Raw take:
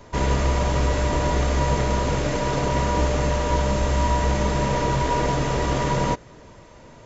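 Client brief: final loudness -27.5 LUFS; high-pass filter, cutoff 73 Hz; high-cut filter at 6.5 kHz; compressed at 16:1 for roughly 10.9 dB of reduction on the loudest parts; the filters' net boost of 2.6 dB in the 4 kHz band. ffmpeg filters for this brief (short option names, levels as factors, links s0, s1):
-af "highpass=73,lowpass=6500,equalizer=f=4000:t=o:g=4,acompressor=threshold=0.0355:ratio=16,volume=2"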